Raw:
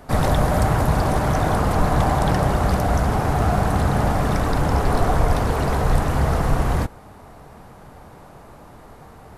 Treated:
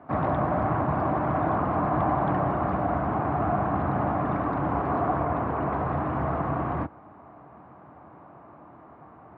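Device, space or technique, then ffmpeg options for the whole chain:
bass cabinet: -filter_complex "[0:a]highpass=f=84:w=0.5412,highpass=f=84:w=1.3066,equalizer=f=100:t=q:w=4:g=-4,equalizer=f=310:t=q:w=4:g=8,equalizer=f=460:t=q:w=4:g=-4,equalizer=f=680:t=q:w=4:g=5,equalizer=f=1100:t=q:w=4:g=7,equalizer=f=1900:t=q:w=4:g=-3,lowpass=f=2200:w=0.5412,lowpass=f=2200:w=1.3066,asettb=1/sr,asplit=3[s0][s1][s2];[s0]atrim=end=5.244[s3];[s1]atrim=start=5.24:end=5.72,asetpts=PTS-STARTPTS,afade=t=in:d=0.004:c=qsin,afade=t=out:st=0.476:d=0.004:c=qsin,acrossover=split=3100[s4][s5];[s5]acompressor=threshold=0.00141:ratio=4:attack=1:release=60[s6];[s4][s6]amix=inputs=2:normalize=0[s7];[s2]atrim=start=5.716[s8];[s3][s7]acrossfade=d=0.004:c1=hsin:c2=qsin[s9];[s9][s8]acrossfade=d=0.004:c1=qsin:c2=hsin,volume=0.447"

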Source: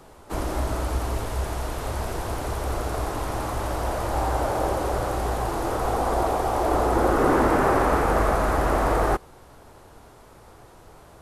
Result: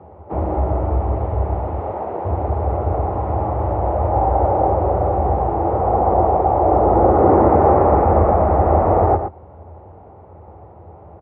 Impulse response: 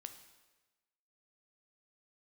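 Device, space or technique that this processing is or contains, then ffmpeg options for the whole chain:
bass cabinet: -filter_complex "[0:a]asettb=1/sr,asplit=3[s0][s1][s2];[s0]atrim=end=1.794[s3];[s1]atrim=start=1.79:end=2.25,asetpts=PTS-STARTPTS,afade=t=in:d=0.004:c=qsin,afade=t=out:st=0.456:d=0.004:c=qsin,highpass=250[s4];[s2]atrim=start=2.246[s5];[s3][s4]acrossfade=d=0.004:c1=hsin:c2=qsin[s6];[s6][s5]acrossfade=d=0.004:c1=qsin:c2=hsin,highpass=f=76:w=0.5412,highpass=f=76:w=1.3066,equalizer=f=82:t=q:w=4:g=10,equalizer=f=130:t=q:w=4:g=-9,equalizer=f=260:t=q:w=4:g=-8,equalizer=f=570:t=q:w=4:g=4,equalizer=f=800:t=q:w=4:g=9,equalizer=f=1600:t=q:w=4:g=-8,lowpass=f=2100:w=0.5412,lowpass=f=2100:w=1.3066,tiltshelf=f=720:g=8.5,bandreject=f=5100:w=6.4,aecho=1:1:117:0.376,volume=1.33"

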